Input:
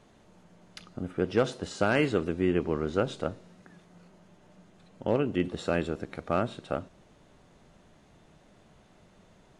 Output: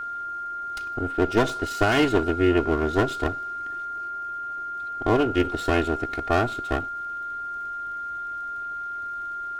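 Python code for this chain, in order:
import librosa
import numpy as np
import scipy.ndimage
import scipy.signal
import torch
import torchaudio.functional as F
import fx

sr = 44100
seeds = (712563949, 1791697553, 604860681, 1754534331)

y = fx.lower_of_two(x, sr, delay_ms=2.8)
y = fx.dmg_crackle(y, sr, seeds[0], per_s=30.0, level_db=-51.0)
y = y + 10.0 ** (-35.0 / 20.0) * np.sin(2.0 * np.pi * 1400.0 * np.arange(len(y)) / sr)
y = y * 10.0 ** (5.5 / 20.0)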